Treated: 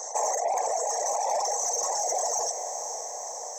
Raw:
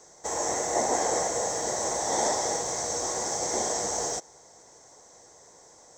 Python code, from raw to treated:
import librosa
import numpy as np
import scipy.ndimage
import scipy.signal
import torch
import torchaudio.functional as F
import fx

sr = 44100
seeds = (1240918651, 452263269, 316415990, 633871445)

p1 = fx.envelope_sharpen(x, sr, power=2.0)
p2 = scipy.signal.sosfilt(scipy.signal.butter(4, 640.0, 'highpass', fs=sr, output='sos'), p1)
p3 = fx.notch(p2, sr, hz=1500.0, q=10.0)
p4 = fx.rider(p3, sr, range_db=10, speed_s=0.5)
p5 = p3 + F.gain(torch.from_numpy(p4), 1.5).numpy()
p6 = fx.vibrato(p5, sr, rate_hz=7.5, depth_cents=7.1)
p7 = fx.stretch_vocoder(p6, sr, factor=0.6)
p8 = 10.0 ** (-17.0 / 20.0) * np.tanh(p7 / 10.0 ** (-17.0 / 20.0))
p9 = fx.dereverb_blind(p8, sr, rt60_s=1.8)
p10 = p9 + fx.echo_diffused(p9, sr, ms=484, feedback_pct=53, wet_db=-13.0, dry=0)
y = fx.env_flatten(p10, sr, amount_pct=50)